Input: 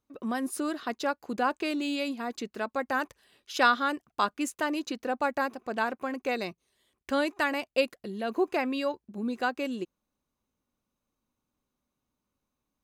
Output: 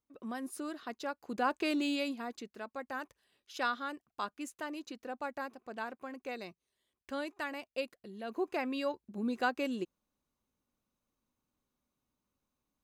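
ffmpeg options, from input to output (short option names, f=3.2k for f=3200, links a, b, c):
-af "volume=7.5dB,afade=t=in:st=1.12:d=0.65:silence=0.398107,afade=t=out:st=1.77:d=0.72:silence=0.316228,afade=t=in:st=8.11:d=1.15:silence=0.375837"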